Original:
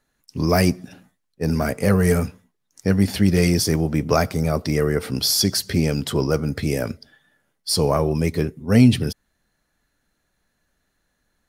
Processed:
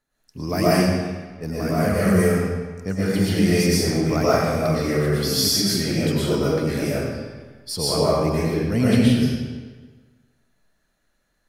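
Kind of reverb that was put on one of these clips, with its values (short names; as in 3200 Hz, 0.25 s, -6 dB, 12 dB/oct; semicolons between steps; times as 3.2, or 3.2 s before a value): digital reverb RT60 1.4 s, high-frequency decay 0.85×, pre-delay 80 ms, DRR -9 dB; gain -8.5 dB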